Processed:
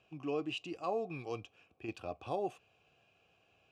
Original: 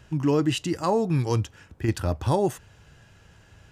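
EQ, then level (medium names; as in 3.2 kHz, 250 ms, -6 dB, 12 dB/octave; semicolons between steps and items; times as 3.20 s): vowel filter a; high-order bell 960 Hz -9.5 dB; +5.0 dB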